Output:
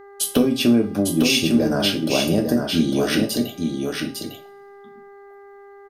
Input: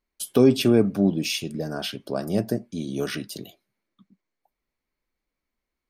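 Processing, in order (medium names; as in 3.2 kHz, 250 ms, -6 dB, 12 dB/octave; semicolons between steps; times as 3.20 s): compression 6:1, threshold -26 dBFS, peak gain reduction 14 dB; delay 853 ms -5 dB; two-slope reverb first 0.31 s, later 1.6 s, from -28 dB, DRR 3 dB; mains buzz 400 Hz, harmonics 5, -53 dBFS -7 dB/octave; trim +9 dB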